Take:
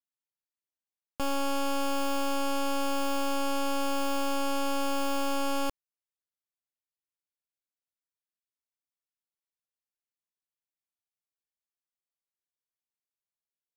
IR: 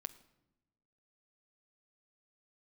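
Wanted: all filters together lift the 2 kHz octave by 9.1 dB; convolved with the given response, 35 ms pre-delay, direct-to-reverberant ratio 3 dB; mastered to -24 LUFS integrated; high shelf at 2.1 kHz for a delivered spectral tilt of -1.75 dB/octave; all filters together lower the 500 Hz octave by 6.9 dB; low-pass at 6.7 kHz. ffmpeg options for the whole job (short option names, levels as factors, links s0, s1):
-filter_complex "[0:a]lowpass=6700,equalizer=f=500:t=o:g=-8.5,equalizer=f=2000:t=o:g=8.5,highshelf=f=2100:g=7,asplit=2[s0][s1];[1:a]atrim=start_sample=2205,adelay=35[s2];[s1][s2]afir=irnorm=-1:irlink=0,volume=1.06[s3];[s0][s3]amix=inputs=2:normalize=0,volume=1.33"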